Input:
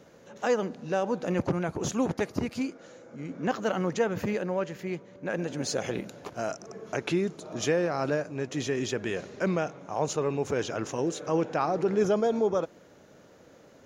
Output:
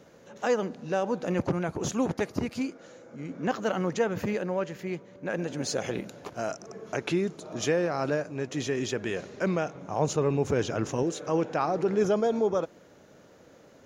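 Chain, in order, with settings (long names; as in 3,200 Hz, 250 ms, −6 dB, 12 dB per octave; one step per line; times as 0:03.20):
0:09.75–0:11.03: low-shelf EQ 260 Hz +8 dB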